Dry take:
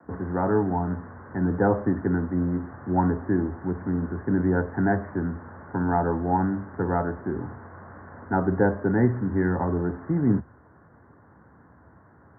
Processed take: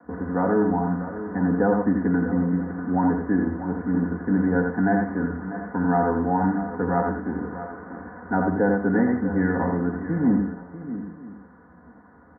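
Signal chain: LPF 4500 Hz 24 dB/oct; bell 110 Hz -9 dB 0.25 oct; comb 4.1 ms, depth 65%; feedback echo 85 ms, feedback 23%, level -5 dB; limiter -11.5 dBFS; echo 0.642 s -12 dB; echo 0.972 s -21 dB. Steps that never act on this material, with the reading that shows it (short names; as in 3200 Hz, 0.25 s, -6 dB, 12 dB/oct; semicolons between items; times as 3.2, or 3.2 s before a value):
LPF 4500 Hz: input band ends at 1800 Hz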